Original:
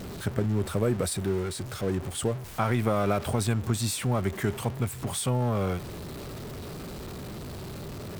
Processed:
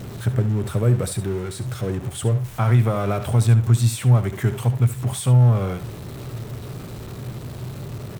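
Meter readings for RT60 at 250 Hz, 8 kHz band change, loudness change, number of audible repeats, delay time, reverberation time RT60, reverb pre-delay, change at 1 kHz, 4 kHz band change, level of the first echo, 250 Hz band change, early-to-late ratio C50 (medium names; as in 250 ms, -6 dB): no reverb, +1.5 dB, +9.5 dB, 1, 71 ms, no reverb, no reverb, +1.5 dB, +0.5 dB, -12.5 dB, +3.5 dB, no reverb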